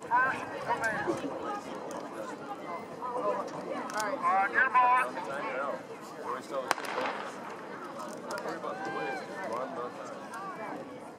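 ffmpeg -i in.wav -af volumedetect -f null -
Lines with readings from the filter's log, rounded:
mean_volume: -33.3 dB
max_volume: -9.1 dB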